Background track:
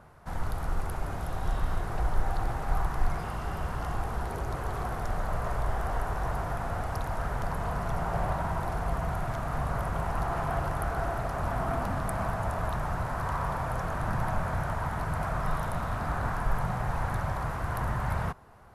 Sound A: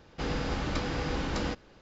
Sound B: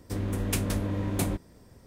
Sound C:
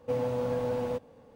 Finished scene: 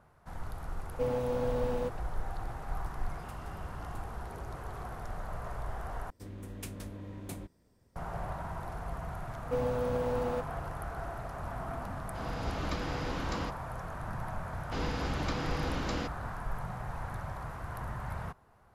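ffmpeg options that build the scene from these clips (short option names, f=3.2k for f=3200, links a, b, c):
-filter_complex "[3:a]asplit=2[a][b];[2:a]asplit=2[c][d];[1:a]asplit=2[e][f];[0:a]volume=-8.5dB[g];[c]acompressor=threshold=-43dB:ratio=6:attack=3.2:release=140:knee=1:detection=peak[h];[e]dynaudnorm=f=120:g=7:m=9.5dB[i];[g]asplit=2[j][k];[j]atrim=end=6.104[l];[d]atrim=end=1.86,asetpts=PTS-STARTPTS,volume=-14dB[m];[k]atrim=start=7.956[n];[a]atrim=end=1.35,asetpts=PTS-STARTPTS,volume=-2dB,afade=t=in:d=0.004:c=hsin,afade=t=out:st=1.346:d=0.004:c=hsin,adelay=910[o];[h]atrim=end=1.86,asetpts=PTS-STARTPTS,volume=-10dB,afade=t=in:d=0.004:c=hsin,afade=t=out:st=1.856:d=0.004:c=hsin,adelay=2760[p];[b]atrim=end=1.35,asetpts=PTS-STARTPTS,volume=-2dB,afade=t=in:d=0.004:c=hsin,afade=t=out:st=1.346:d=0.004:c=hsin,adelay=9430[q];[i]atrim=end=1.81,asetpts=PTS-STARTPTS,volume=-14dB,afade=t=in:d=0.004:c=hsin,afade=t=out:st=1.806:d=0.004:c=hsin,adelay=11960[r];[f]atrim=end=1.81,asetpts=PTS-STARTPTS,volume=-3dB,afade=t=in:d=0.004:c=hsin,afade=t=out:st=1.806:d=0.004:c=hsin,adelay=14530[s];[l][m]acrossfade=d=0.004:c1=hsin:c2=hsin[t];[t][n]acrossfade=d=0.004:c1=hsin:c2=hsin[u];[u][o][p][q][r][s]amix=inputs=6:normalize=0"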